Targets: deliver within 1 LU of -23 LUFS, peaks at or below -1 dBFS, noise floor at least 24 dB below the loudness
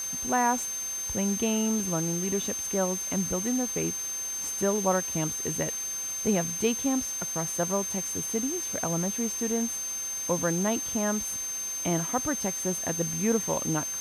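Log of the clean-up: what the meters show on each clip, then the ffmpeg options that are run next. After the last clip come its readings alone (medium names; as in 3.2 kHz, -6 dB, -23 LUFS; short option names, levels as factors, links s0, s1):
steady tone 6.3 kHz; tone level -31 dBFS; noise floor -34 dBFS; noise floor target -52 dBFS; loudness -28.0 LUFS; peak level -12.5 dBFS; loudness target -23.0 LUFS
-> -af "bandreject=f=6300:w=30"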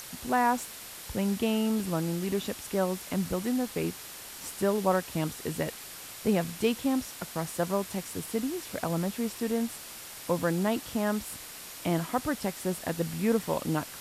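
steady tone not found; noise floor -44 dBFS; noise floor target -55 dBFS
-> -af "afftdn=nr=11:nf=-44"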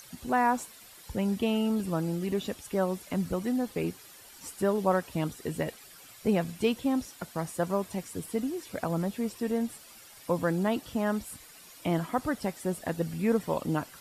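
noise floor -52 dBFS; noise floor target -55 dBFS
-> -af "afftdn=nr=6:nf=-52"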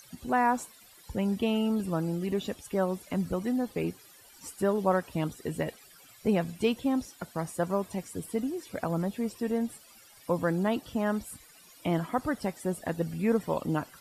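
noise floor -55 dBFS; loudness -31.0 LUFS; peak level -13.5 dBFS; loudness target -23.0 LUFS
-> -af "volume=2.51"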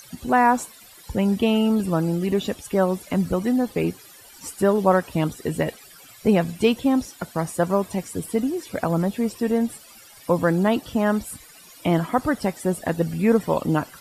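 loudness -23.0 LUFS; peak level -5.5 dBFS; noise floor -47 dBFS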